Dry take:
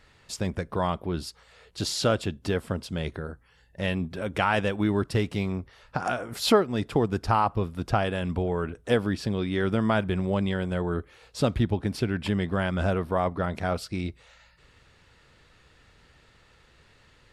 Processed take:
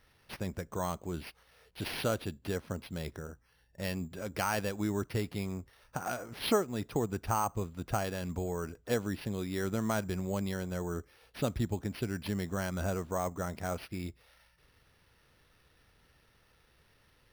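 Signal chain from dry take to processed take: careless resampling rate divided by 6×, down none, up hold; trim -8 dB

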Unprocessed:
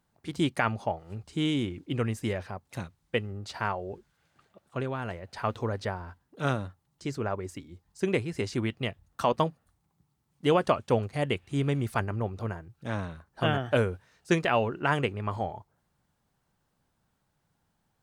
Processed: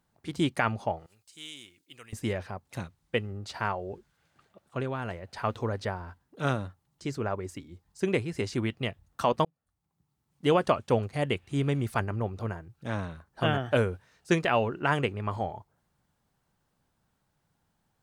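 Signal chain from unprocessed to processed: 1.06–2.13 s: pre-emphasis filter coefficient 0.97; 9.45–10.45 s: fade in

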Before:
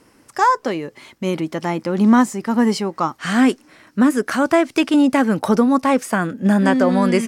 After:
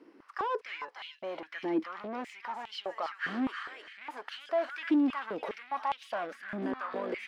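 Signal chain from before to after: treble shelf 3.6 kHz +10.5 dB; peak limiter -11.5 dBFS, peak gain reduction 10.5 dB; feedback echo behind a high-pass 300 ms, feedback 32%, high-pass 1.8 kHz, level -4 dB; saturation -21.5 dBFS, distortion -10 dB; distance through air 350 m; step-sequenced high-pass 4.9 Hz 320–3100 Hz; trim -9 dB

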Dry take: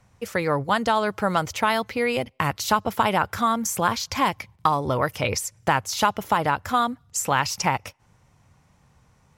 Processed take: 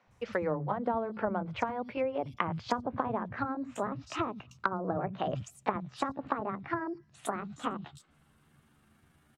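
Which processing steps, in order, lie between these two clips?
pitch bend over the whole clip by +7.5 st starting unshifted; three bands offset in time mids, lows, highs 70/110 ms, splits 210/4900 Hz; low-pass that closes with the level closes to 630 Hz, closed at -21 dBFS; trim -4 dB

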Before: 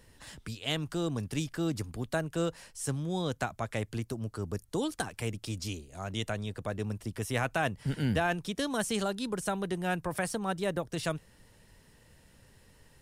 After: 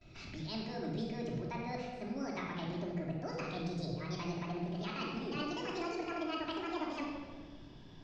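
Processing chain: gliding tape speed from 137% -> 187%; gate with hold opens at -51 dBFS; steep low-pass 5.6 kHz 36 dB/octave; peaking EQ 1.1 kHz -4.5 dB 0.36 oct; reverse; compression 6:1, threshold -39 dBFS, peak gain reduction 13.5 dB; reverse; simulated room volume 1600 m³, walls mixed, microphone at 2.9 m; trim -2.5 dB

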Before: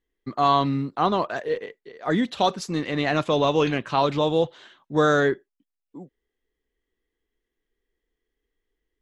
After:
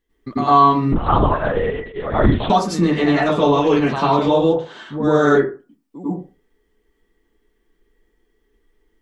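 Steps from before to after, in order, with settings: compression 2.5:1, threshold -32 dBFS, peak gain reduction 11.5 dB; 4.43–5.26 s: phase dispersion highs, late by 73 ms, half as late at 1.1 kHz; reverberation RT60 0.35 s, pre-delay 87 ms, DRR -9.5 dB; 0.92–2.50 s: LPC vocoder at 8 kHz whisper; trim +4.5 dB

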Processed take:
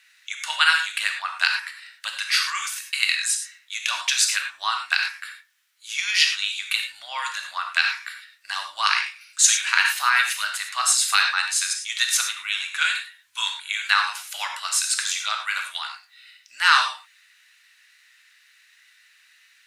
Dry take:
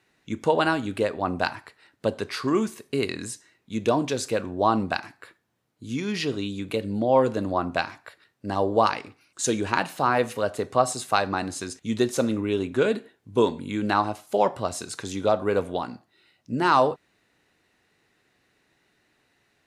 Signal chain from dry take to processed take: inverse Chebyshev high-pass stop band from 470 Hz, stop band 60 dB; gated-style reverb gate 130 ms flat, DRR 3.5 dB; loudness maximiser +13.5 dB; trim -1 dB

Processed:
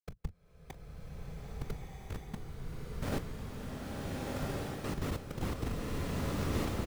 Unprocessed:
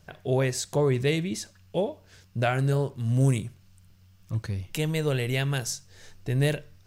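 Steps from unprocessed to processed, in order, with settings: spectral levelling over time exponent 0.6; Doppler pass-by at 1.42 s, 13 m/s, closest 4 m; low-pass that closes with the level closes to 960 Hz, closed at -28.5 dBFS; high-pass 220 Hz 24 dB/octave; tilt EQ -4.5 dB/octave; inverted gate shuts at -30 dBFS, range -33 dB; Schmitt trigger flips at -38.5 dBFS; early reflections 24 ms -17 dB, 40 ms -18 dB; whisper effect; swelling reverb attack 1460 ms, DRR -5 dB; trim +14.5 dB

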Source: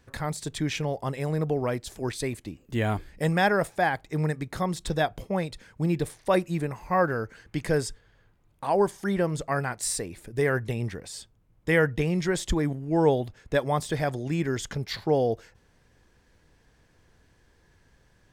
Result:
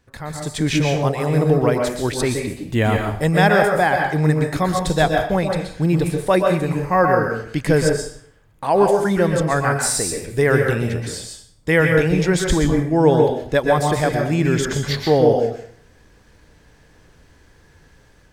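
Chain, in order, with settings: level rider gain up to 10 dB; on a send: reverberation RT60 0.60 s, pre-delay 112 ms, DRR 2 dB; on the sum: trim -1.5 dB

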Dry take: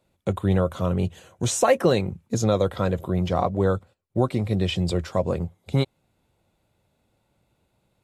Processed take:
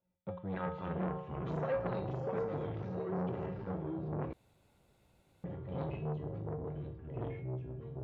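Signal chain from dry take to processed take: 0.52–0.96 s: spectral peaks clipped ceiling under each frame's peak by 25 dB; 2.37–3.67 s: overload inside the chain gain 24 dB; distance through air 450 m; feedback comb 180 Hz, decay 0.47 s, harmonics odd, mix 90%; echo whose repeats swap between lows and highs 516 ms, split 870 Hz, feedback 55%, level -9 dB; ever faster or slower copies 335 ms, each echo -3 st, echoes 3; resampled via 16 kHz; 4.33–5.44 s: room tone; transformer saturation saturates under 830 Hz

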